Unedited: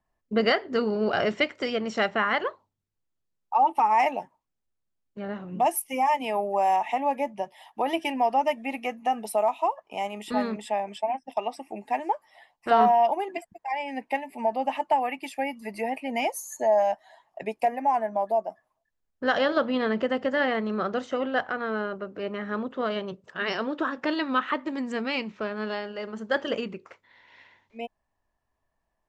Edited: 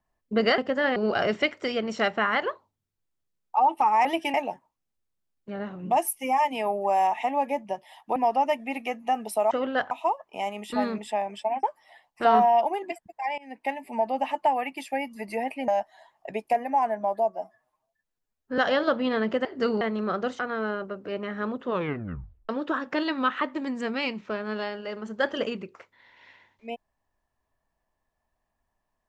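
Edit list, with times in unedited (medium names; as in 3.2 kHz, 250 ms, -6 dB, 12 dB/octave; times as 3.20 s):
0.58–0.94 s: swap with 20.14–20.52 s
7.85–8.14 s: move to 4.03 s
11.21–12.09 s: delete
13.84–14.20 s: fade in linear, from -21 dB
16.14–16.80 s: delete
18.41–19.27 s: stretch 1.5×
21.10–21.50 s: move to 9.49 s
22.76 s: tape stop 0.84 s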